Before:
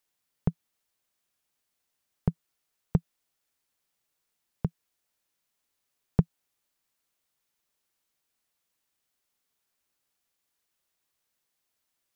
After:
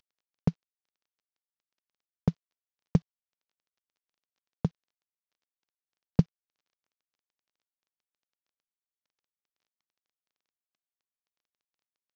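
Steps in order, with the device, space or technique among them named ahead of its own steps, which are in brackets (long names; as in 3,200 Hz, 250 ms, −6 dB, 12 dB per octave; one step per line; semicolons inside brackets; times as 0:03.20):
early wireless headset (high-pass filter 160 Hz 6 dB per octave; variable-slope delta modulation 32 kbit/s)
level +5 dB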